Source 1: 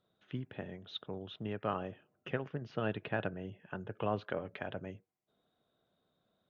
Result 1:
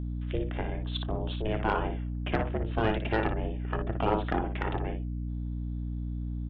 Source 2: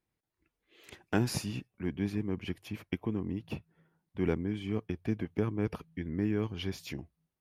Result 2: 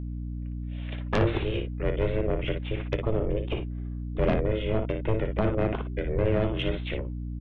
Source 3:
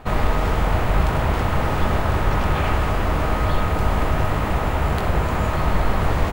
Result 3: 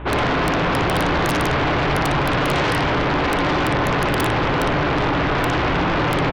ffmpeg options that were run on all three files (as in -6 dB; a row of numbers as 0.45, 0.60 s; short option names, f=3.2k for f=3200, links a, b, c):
-af "highpass=72,aeval=exprs='val(0)*sin(2*PI*220*n/s)':c=same,aresample=8000,aeval=exprs='(mod(4.47*val(0)+1,2)-1)/4.47':c=same,aresample=44100,aecho=1:1:29|58:0.133|0.422,aeval=exprs='val(0)+0.00708*(sin(2*PI*60*n/s)+sin(2*PI*2*60*n/s)/2+sin(2*PI*3*60*n/s)/3+sin(2*PI*4*60*n/s)/4+sin(2*PI*5*60*n/s)/5)':c=same,aeval=exprs='0.335*sin(PI/2*4.47*val(0)/0.335)':c=same,volume=-6dB"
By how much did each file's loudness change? +8.5, +6.0, +2.5 LU